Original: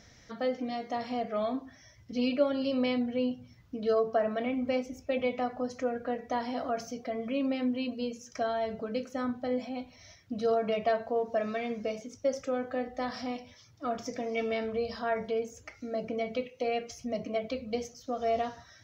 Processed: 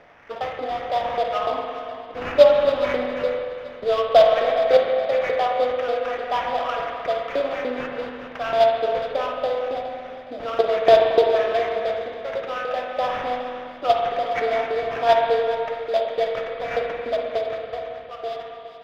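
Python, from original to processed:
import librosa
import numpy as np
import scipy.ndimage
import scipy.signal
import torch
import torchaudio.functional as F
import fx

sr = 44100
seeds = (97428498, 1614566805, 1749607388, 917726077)

p1 = fx.fade_out_tail(x, sr, length_s=2.12)
p2 = scipy.signal.sosfilt(scipy.signal.butter(2, 290.0, 'highpass', fs=sr, output='sos'), p1)
p3 = fx.filter_lfo_highpass(p2, sr, shape='saw_up', hz=3.4, low_hz=430.0, high_hz=1800.0, q=2.6)
p4 = fx.level_steps(p3, sr, step_db=23)
p5 = p3 + (p4 * librosa.db_to_amplitude(0.0))
p6 = fx.sample_hold(p5, sr, seeds[0], rate_hz=4200.0, jitter_pct=20)
p7 = fx.air_absorb(p6, sr, metres=280.0)
p8 = p7 + fx.echo_feedback(p7, sr, ms=416, feedback_pct=39, wet_db=-13.5, dry=0)
p9 = fx.rev_spring(p8, sr, rt60_s=2.2, pass_ms=(44, 56), chirp_ms=25, drr_db=1.0)
y = p9 * librosa.db_to_amplitude(5.5)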